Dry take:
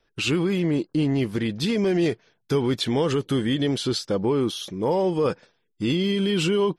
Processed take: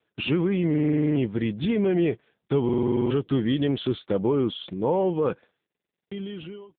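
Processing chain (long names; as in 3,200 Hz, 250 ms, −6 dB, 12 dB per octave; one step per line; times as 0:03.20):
fade-out on the ending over 1.69 s
buffer that repeats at 0:00.69/0:02.64/0:05.65, samples 2,048, times 9
AMR narrowband 6.7 kbit/s 8,000 Hz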